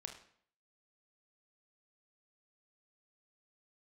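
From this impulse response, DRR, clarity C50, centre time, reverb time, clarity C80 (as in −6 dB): 4.0 dB, 8.0 dB, 19 ms, 0.60 s, 12.0 dB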